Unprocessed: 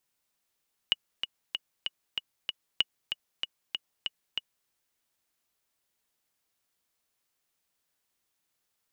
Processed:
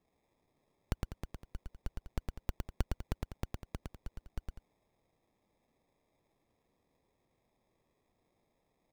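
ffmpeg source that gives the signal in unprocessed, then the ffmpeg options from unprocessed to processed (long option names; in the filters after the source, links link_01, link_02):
-f lavfi -i "aevalsrc='pow(10,(-10-7.5*gte(mod(t,6*60/191),60/191))/20)*sin(2*PI*2910*mod(t,60/191))*exp(-6.91*mod(t,60/191)/0.03)':duration=3.76:sample_rate=44100"
-filter_complex "[0:a]acrusher=samples=30:mix=1:aa=0.000001,asoftclip=type=tanh:threshold=-18.5dB,asplit=2[link_01][link_02];[link_02]aecho=0:1:110|198:0.668|0.251[link_03];[link_01][link_03]amix=inputs=2:normalize=0"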